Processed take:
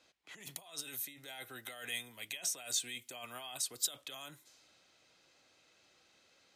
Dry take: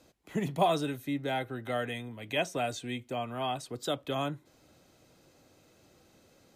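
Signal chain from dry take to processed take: compressor with a negative ratio -37 dBFS, ratio -1; level-controlled noise filter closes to 2.6 kHz, open at -34.5 dBFS; pre-emphasis filter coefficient 0.97; trim +7 dB

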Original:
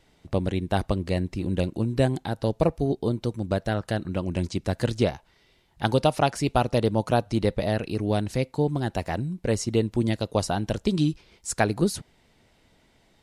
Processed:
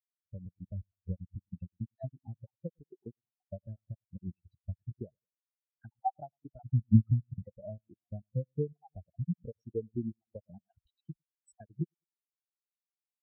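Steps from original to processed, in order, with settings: random holes in the spectrogram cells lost 48%; level rider gain up to 10.5 dB; feedback delay 101 ms, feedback 41%, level -16 dB; compression 6:1, threshold -23 dBFS, peak gain reduction 13.5 dB; 6.65–7.45 s: comb 0.9 ms, depth 86%; spectral contrast expander 4:1

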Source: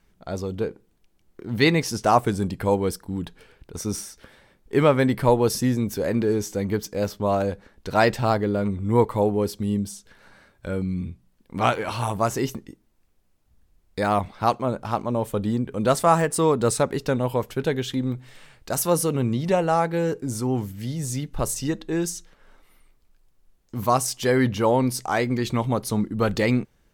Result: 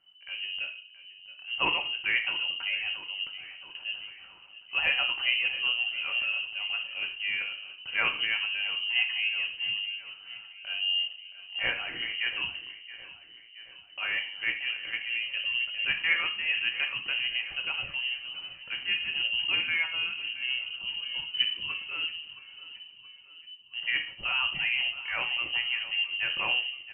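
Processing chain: peaking EQ 540 Hz -5 dB 1.8 oct; feedback delay 673 ms, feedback 53%, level -16 dB; simulated room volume 460 m³, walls furnished, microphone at 1.3 m; frequency inversion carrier 3 kHz; trim -7.5 dB

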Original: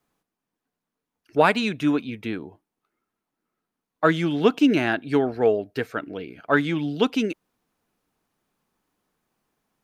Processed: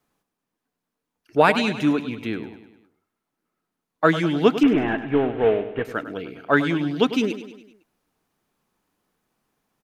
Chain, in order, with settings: 4.63–5.85 s: CVSD coder 16 kbps; vibrato 6.2 Hz 12 cents; on a send: feedback delay 101 ms, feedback 53%, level -12.5 dB; on the sum: trim +1.5 dB

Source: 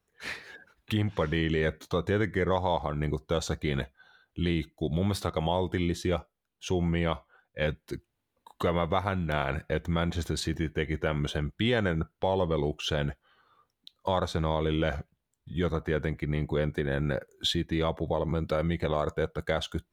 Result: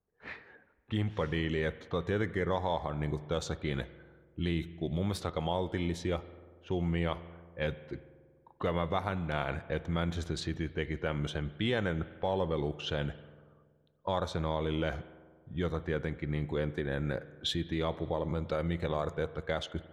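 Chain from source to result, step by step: spring tank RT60 2 s, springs 47 ms, chirp 45 ms, DRR 15 dB; level-controlled noise filter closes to 900 Hz, open at -23.5 dBFS; trim -4.5 dB

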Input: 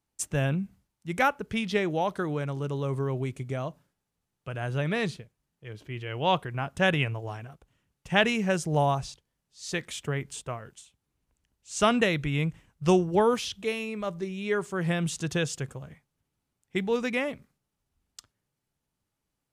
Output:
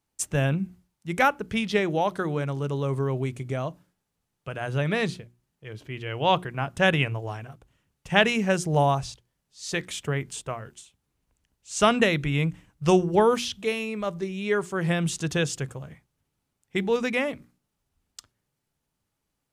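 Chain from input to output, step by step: hum notches 60/120/180/240/300/360 Hz; trim +3 dB

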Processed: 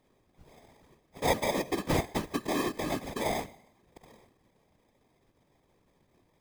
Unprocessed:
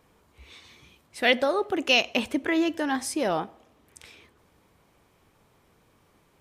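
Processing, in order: sample-and-hold 31×; feedback comb 190 Hz, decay 0.76 s, harmonics all, mix 50%; whisper effect

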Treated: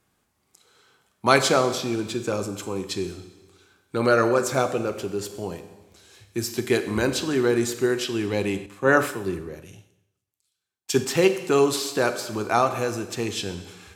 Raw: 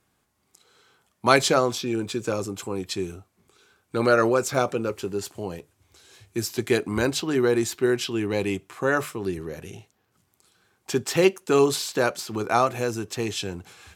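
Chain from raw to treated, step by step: Schroeder reverb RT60 1.2 s, combs from 30 ms, DRR 9 dB; 8.66–11.05 s: three bands expanded up and down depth 70%

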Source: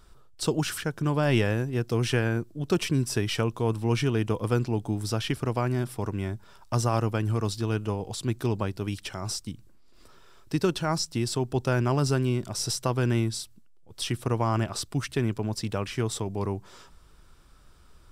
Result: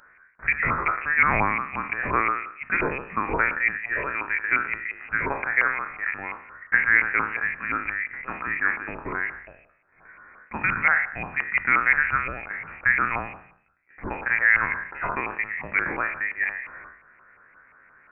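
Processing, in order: spectral sustain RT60 0.62 s; 5.27–5.94 s: bass shelf 210 Hz -10.5 dB; LFO high-pass saw down 5.7 Hz 620–1700 Hz; 3.77–4.49 s: distance through air 440 m; frequency inversion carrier 2.8 kHz; trim +5.5 dB

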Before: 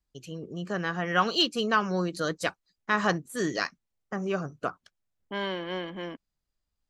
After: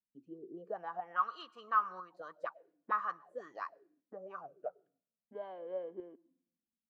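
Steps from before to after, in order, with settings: 4.54–5.35 s: static phaser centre 1.1 kHz, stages 6; on a send at -23 dB: reverberation RT60 0.90 s, pre-delay 100 ms; on the sum: auto-wah 220–1200 Hz, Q 11, up, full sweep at -24 dBFS; tremolo saw up 1 Hz, depth 45%; trim +4 dB

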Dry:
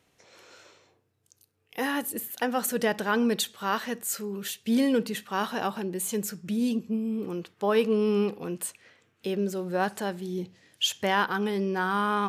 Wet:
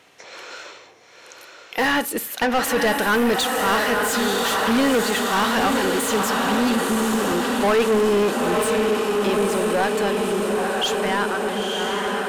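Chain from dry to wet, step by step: fade out at the end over 3.80 s; echo that smears into a reverb 947 ms, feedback 69%, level -5.5 dB; overdrive pedal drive 23 dB, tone 3.5 kHz, clips at -12.5 dBFS; trim +1.5 dB

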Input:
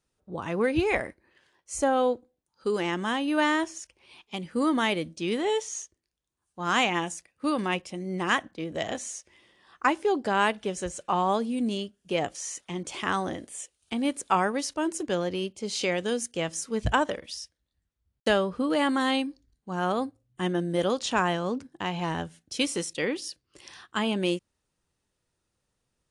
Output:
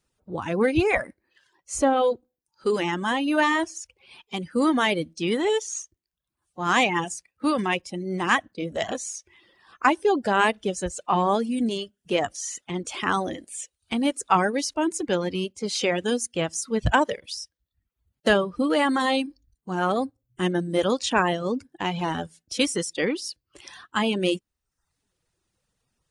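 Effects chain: coarse spectral quantiser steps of 15 dB; reverb removal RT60 0.62 s; trim +4.5 dB

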